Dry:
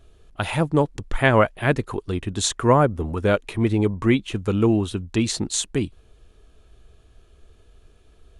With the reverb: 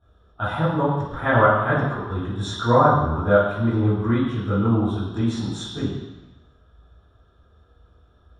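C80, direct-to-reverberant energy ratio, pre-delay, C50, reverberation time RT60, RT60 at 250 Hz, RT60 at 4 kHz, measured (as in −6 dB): 3.0 dB, −14.0 dB, 7 ms, 0.0 dB, 1.1 s, 1.0 s, 1.2 s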